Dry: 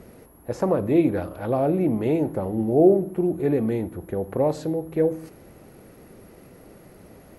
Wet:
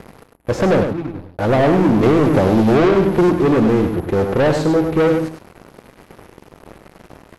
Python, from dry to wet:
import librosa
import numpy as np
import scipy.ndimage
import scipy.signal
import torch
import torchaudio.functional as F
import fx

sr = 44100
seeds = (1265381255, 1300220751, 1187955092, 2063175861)

y = fx.tone_stack(x, sr, knobs='10-0-1', at=(0.83, 1.39))
y = fx.leveller(y, sr, passes=5)
y = fx.air_absorb(y, sr, metres=52.0)
y = y + 10.0 ** (-6.5 / 20.0) * np.pad(y, (int(101 * sr / 1000.0), 0))[:len(y)]
y = fx.band_squash(y, sr, depth_pct=100, at=(2.03, 3.3))
y = y * 10.0 ** (-4.5 / 20.0)